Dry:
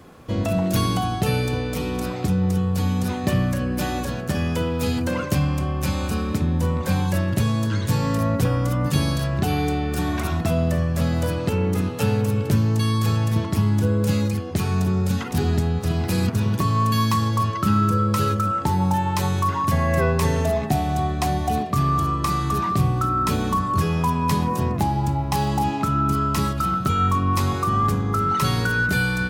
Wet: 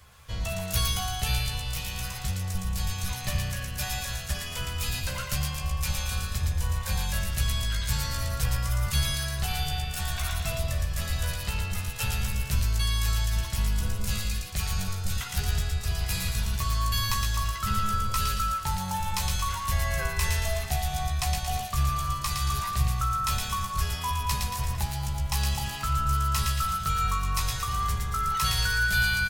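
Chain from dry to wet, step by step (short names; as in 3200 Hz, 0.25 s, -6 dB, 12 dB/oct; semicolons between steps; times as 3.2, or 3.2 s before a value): octaver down 1 oct, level 0 dB; passive tone stack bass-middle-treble 10-0-10; doubler 15 ms -5.5 dB; on a send: thin delay 0.114 s, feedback 49%, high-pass 1600 Hz, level -3 dB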